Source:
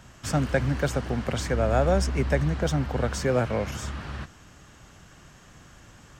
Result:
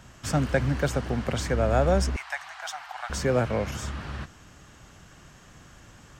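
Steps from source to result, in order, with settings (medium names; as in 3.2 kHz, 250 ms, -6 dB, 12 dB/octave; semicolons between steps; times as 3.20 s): 2.16–3.10 s: elliptic high-pass 740 Hz, stop band 40 dB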